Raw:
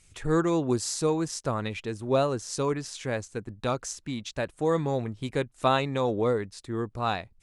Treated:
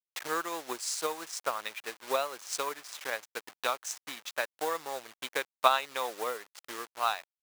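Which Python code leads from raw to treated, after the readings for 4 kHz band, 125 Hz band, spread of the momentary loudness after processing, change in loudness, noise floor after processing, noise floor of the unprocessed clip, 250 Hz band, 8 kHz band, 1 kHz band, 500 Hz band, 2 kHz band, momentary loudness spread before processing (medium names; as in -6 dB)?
+0.5 dB, under -30 dB, 10 LU, -5.0 dB, under -85 dBFS, -61 dBFS, -19.0 dB, -1.5 dB, -0.5 dB, -8.5 dB, +1.0 dB, 8 LU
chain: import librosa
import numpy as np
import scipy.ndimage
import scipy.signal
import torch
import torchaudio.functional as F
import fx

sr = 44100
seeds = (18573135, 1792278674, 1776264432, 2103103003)

y = fx.delta_hold(x, sr, step_db=-35.5)
y = fx.transient(y, sr, attack_db=8, sustain_db=-5)
y = scipy.signal.sosfilt(scipy.signal.butter(2, 920.0, 'highpass', fs=sr, output='sos'), y)
y = F.gain(torch.from_numpy(y), -1.0).numpy()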